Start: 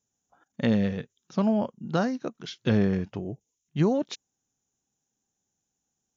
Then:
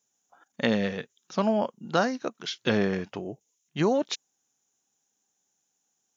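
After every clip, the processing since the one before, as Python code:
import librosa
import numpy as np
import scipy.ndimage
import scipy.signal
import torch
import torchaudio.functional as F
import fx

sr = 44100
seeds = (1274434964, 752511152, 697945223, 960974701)

y = fx.highpass(x, sr, hz=590.0, slope=6)
y = F.gain(torch.from_numpy(y), 6.0).numpy()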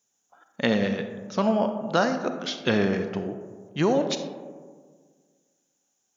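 y = fx.rev_freeverb(x, sr, rt60_s=1.7, hf_ratio=0.3, predelay_ms=5, drr_db=7.0)
y = F.gain(torch.from_numpy(y), 1.5).numpy()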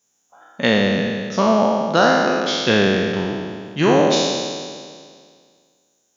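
y = fx.spec_trails(x, sr, decay_s=2.01)
y = F.gain(torch.from_numpy(y), 4.0).numpy()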